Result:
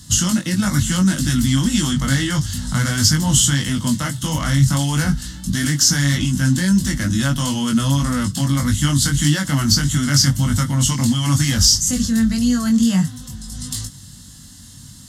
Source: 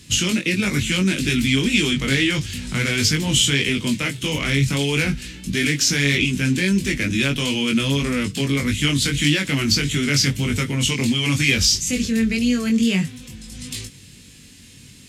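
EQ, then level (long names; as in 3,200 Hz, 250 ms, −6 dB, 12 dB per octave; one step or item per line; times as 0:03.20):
dynamic equaliser 3,800 Hz, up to −5 dB, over −36 dBFS, Q 3.6
phaser with its sweep stopped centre 1,000 Hz, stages 4
+7.0 dB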